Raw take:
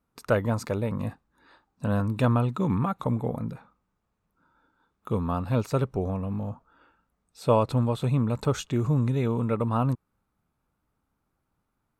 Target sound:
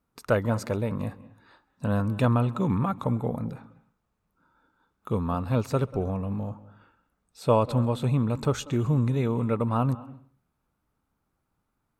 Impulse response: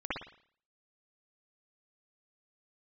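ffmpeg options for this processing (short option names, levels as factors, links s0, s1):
-filter_complex "[0:a]asplit=2[s0][s1];[s1]bass=f=250:g=1,treble=f=4000:g=5[s2];[1:a]atrim=start_sample=2205,afade=t=out:st=0.41:d=0.01,atrim=end_sample=18522,adelay=134[s3];[s2][s3]afir=irnorm=-1:irlink=0,volume=0.0668[s4];[s0][s4]amix=inputs=2:normalize=0"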